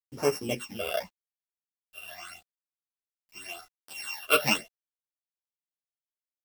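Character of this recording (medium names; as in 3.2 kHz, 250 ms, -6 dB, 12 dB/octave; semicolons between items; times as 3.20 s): a buzz of ramps at a fixed pitch in blocks of 16 samples; phasing stages 8, 0.87 Hz, lowest notch 250–3500 Hz; a quantiser's noise floor 10-bit, dither none; a shimmering, thickened sound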